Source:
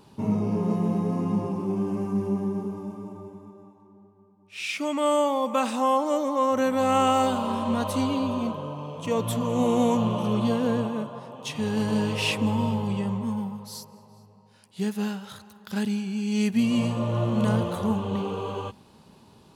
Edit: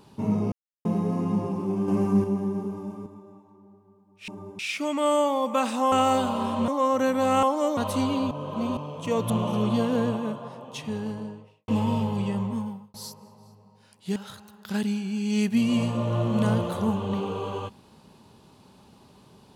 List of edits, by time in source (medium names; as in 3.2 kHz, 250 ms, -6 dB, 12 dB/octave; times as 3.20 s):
0.52–0.85 s: mute
1.88–2.24 s: gain +5 dB
3.06–3.37 s: move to 4.59 s
5.92–6.26 s: swap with 7.01–7.77 s
8.31–8.77 s: reverse
9.30–10.01 s: delete
11.17–12.39 s: studio fade out
13.24–13.65 s: fade out
14.87–15.18 s: delete